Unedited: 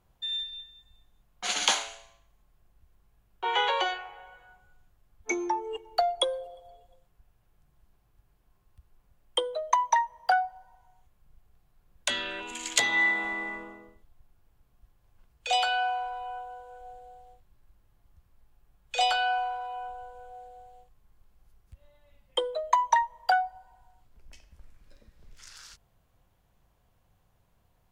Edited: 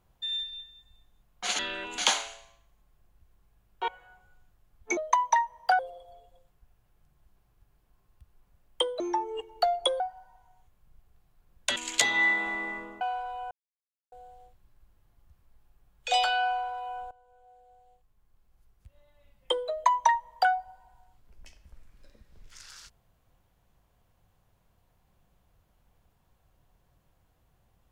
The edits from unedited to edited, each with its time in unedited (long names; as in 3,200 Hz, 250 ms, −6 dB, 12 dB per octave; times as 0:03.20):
0:03.49–0:04.27: remove
0:05.36–0:06.36: swap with 0:09.57–0:10.39
0:12.15–0:12.54: move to 0:01.59
0:13.79–0:15.88: remove
0:16.38–0:16.99: silence
0:19.98–0:22.40: fade in, from −18.5 dB